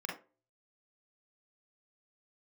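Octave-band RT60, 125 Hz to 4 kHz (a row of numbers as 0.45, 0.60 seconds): 0.40, 0.45, 0.40, 0.30, 0.25, 0.20 seconds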